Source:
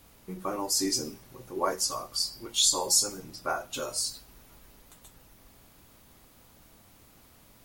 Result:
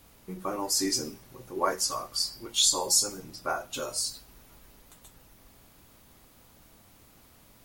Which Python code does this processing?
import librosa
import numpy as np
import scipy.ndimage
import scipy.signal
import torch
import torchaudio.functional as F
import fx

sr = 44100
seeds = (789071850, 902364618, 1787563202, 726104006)

y = fx.dynamic_eq(x, sr, hz=1700.0, q=1.2, threshold_db=-45.0, ratio=4.0, max_db=4, at=(0.61, 2.73))